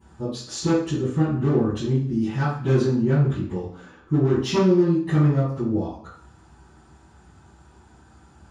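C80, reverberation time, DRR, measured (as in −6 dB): 6.5 dB, 0.60 s, −21.5 dB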